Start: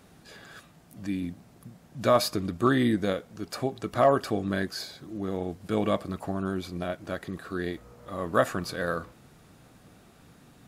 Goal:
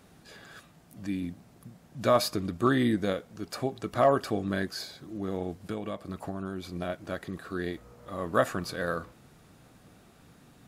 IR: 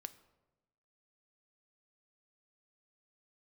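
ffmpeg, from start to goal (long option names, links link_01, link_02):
-filter_complex "[0:a]asettb=1/sr,asplit=3[link_01][link_02][link_03];[link_01]atrim=end=5.624[link_04];[link_02]atrim=start=5.62:end=6.69,asetpts=PTS-STARTPTS,afade=type=in:duration=0.004:curve=qsin,afade=type=out:start_time=1.066:duration=0.004:curve=qsin,acompressor=threshold=-29dB:ratio=12[link_05];[link_03]atrim=start=6.686[link_06];[link_04][link_05]acrossfade=duration=0.004:curve1=hsin:curve2=qsin[link_07];[link_07][link_06]acrossfade=duration=0.004:curve1=qsin:curve2=hsin,volume=-1.5dB"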